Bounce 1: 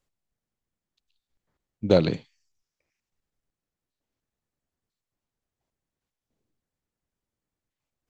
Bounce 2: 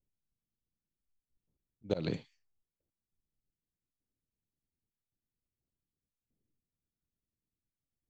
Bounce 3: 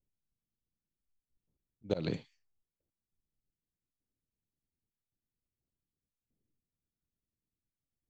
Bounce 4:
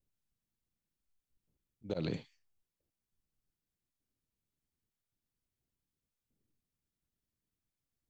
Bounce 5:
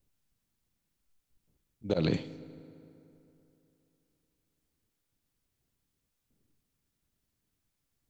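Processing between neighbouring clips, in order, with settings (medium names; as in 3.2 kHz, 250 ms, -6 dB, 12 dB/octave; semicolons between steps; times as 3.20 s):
level-controlled noise filter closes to 320 Hz, open at -28.5 dBFS; slow attack 263 ms; trim -3.5 dB
no audible change
peak limiter -26.5 dBFS, peak gain reduction 9 dB; trim +1.5 dB
reverberation RT60 3.1 s, pre-delay 4 ms, DRR 15 dB; trim +8 dB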